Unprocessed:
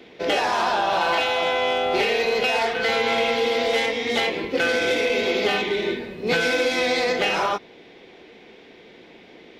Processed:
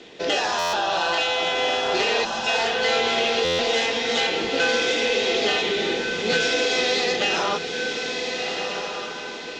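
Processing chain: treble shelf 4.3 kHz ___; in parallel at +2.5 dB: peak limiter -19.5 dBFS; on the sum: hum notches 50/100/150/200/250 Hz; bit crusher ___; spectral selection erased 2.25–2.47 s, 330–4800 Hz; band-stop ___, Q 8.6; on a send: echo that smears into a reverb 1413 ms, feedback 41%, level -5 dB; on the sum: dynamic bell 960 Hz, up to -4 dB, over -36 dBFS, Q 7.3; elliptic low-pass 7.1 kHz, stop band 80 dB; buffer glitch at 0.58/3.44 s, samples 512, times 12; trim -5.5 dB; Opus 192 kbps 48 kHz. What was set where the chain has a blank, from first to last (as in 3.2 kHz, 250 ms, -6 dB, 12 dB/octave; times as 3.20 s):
+10.5 dB, 8-bit, 2.2 kHz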